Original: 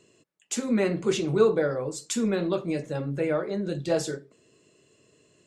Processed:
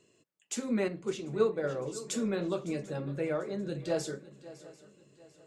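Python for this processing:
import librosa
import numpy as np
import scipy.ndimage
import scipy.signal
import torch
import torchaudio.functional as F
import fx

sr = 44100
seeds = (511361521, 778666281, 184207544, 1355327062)

y = fx.echo_swing(x, sr, ms=743, ratio=3, feedback_pct=35, wet_db=-17.5)
y = fx.upward_expand(y, sr, threshold_db=-29.0, expansion=1.5, at=(0.88, 1.64))
y = y * librosa.db_to_amplitude(-6.0)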